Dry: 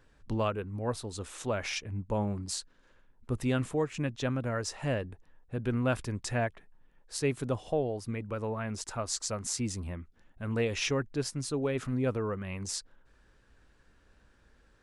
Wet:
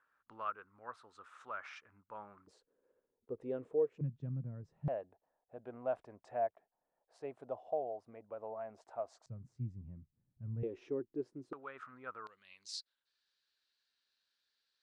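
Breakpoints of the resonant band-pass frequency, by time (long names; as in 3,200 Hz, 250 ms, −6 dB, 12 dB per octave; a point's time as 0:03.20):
resonant band-pass, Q 4.6
1,300 Hz
from 0:02.47 460 Hz
from 0:04.01 150 Hz
from 0:04.88 680 Hz
from 0:09.26 130 Hz
from 0:10.63 360 Hz
from 0:11.53 1,300 Hz
from 0:12.27 4,200 Hz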